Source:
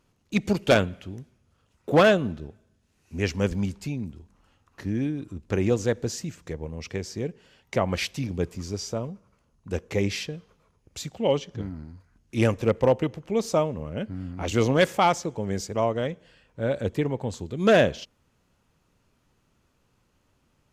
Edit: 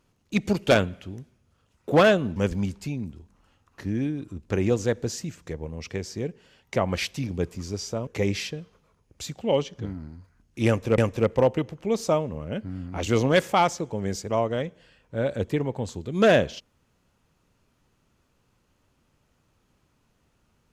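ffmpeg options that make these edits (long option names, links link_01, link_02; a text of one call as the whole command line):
ffmpeg -i in.wav -filter_complex "[0:a]asplit=4[link_01][link_02][link_03][link_04];[link_01]atrim=end=2.362[link_05];[link_02]atrim=start=3.358:end=9.072[link_06];[link_03]atrim=start=9.828:end=12.742[link_07];[link_04]atrim=start=12.428[link_08];[link_05][link_06]acrossfade=duration=0.004:curve1=hsin:curve2=hsin[link_09];[link_09][link_07]acrossfade=duration=0.004:curve1=hsin:curve2=hsin[link_10];[link_10][link_08]acrossfade=duration=0.004:curve1=hsin:curve2=hsin" out.wav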